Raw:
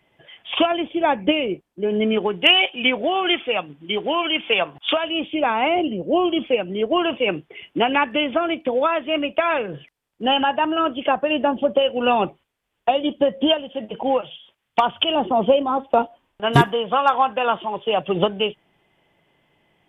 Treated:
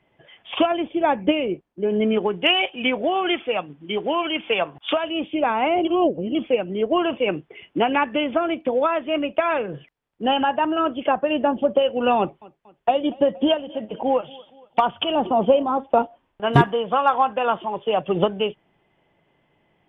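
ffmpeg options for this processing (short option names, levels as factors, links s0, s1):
-filter_complex "[0:a]asettb=1/sr,asplit=3[s0][s1][s2];[s0]atrim=end=12.184[s3];[s1]atrim=start=12.18:end=15.7,asetpts=PTS-STARTPTS,afade=t=in:d=0.004:c=qsin,afade=t=out:st=3.516:d=0.004:c=qsin,aecho=1:1:235|470|705:0.0708|0.0347|0.017,atrim=end_sample=155232[s4];[s2]atrim=start=15.696[s5];[s3][s4]acrossfade=d=0.004:c1=hsin:c2=qsin[s6];[s6][s5]acrossfade=d=0.004:c1=qsin:c2=hsin,asplit=3[s7][s8][s9];[s7]atrim=end=5.852[s10];[s8]atrim=start=5.848:end=6.352,asetpts=PTS-STARTPTS,areverse[s11];[s9]atrim=start=6.348[s12];[s10][s11]acrossfade=d=0.004:c1=hsin:c2=hsin[s13];[s13][s12]acrossfade=d=0.004:c1=hsin:c2=hsin,lowpass=f=1900:p=1"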